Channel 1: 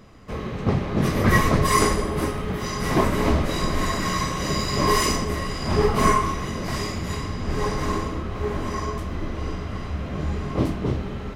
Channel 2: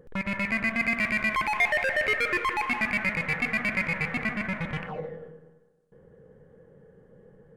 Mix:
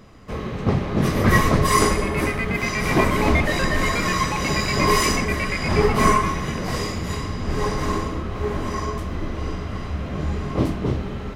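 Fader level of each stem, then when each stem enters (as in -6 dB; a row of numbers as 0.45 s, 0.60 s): +1.5 dB, -1.0 dB; 0.00 s, 1.75 s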